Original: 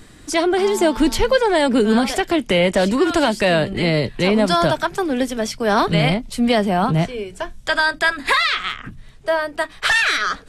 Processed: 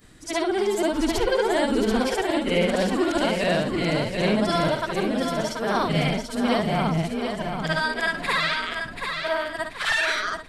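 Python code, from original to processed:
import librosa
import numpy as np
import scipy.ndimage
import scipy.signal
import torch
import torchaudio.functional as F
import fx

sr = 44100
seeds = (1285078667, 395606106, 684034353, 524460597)

p1 = fx.frame_reverse(x, sr, frame_ms=149.0)
p2 = p1 + fx.echo_feedback(p1, sr, ms=734, feedback_pct=38, wet_db=-6.0, dry=0)
y = F.gain(torch.from_numpy(p2), -3.5).numpy()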